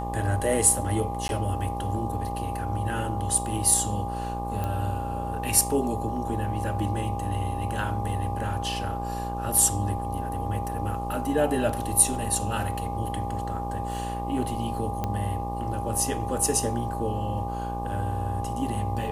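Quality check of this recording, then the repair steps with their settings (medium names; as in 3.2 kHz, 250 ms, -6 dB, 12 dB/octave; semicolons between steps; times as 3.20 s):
buzz 60 Hz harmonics 20 -33 dBFS
whine 810 Hz -32 dBFS
1.28–1.29 s: dropout 11 ms
4.64 s: pop -17 dBFS
15.04 s: pop -15 dBFS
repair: de-click; de-hum 60 Hz, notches 20; band-stop 810 Hz, Q 30; interpolate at 1.28 s, 11 ms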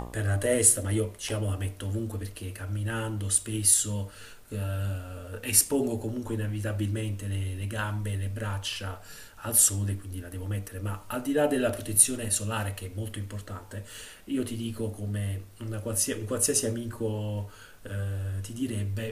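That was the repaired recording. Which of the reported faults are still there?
nothing left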